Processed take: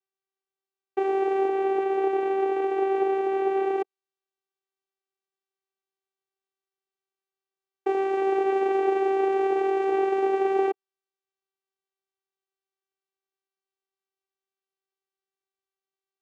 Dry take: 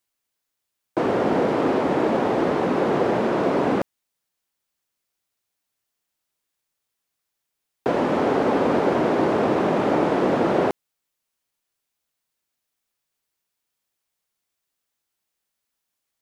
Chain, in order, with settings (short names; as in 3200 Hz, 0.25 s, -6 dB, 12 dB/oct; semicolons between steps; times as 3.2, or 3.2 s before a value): high shelf 3000 Hz -6 dB, from 1.48 s -12 dB, from 3.79 s -3 dB; vocoder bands 4, saw 388 Hz; gain -2.5 dB